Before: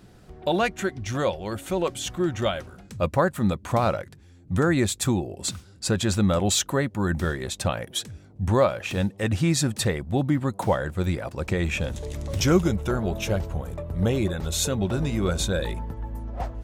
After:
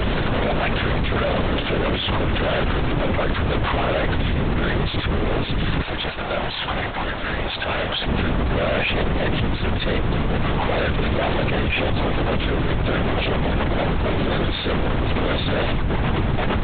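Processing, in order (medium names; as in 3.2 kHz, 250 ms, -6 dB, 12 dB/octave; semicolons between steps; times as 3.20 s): one-bit comparator; 5.85–8.07 s: high-pass 390 Hz; LPC vocoder at 8 kHz whisper; trim +5.5 dB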